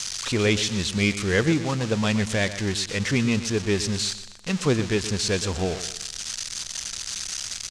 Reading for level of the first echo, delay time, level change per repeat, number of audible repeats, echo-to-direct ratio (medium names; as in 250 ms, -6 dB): -13.0 dB, 123 ms, -8.5 dB, 3, -12.5 dB